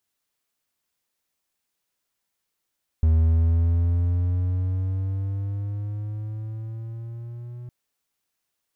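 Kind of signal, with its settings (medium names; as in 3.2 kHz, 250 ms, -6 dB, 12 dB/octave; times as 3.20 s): gliding synth tone triangle, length 4.66 s, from 79.3 Hz, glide +7.5 st, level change -20 dB, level -12.5 dB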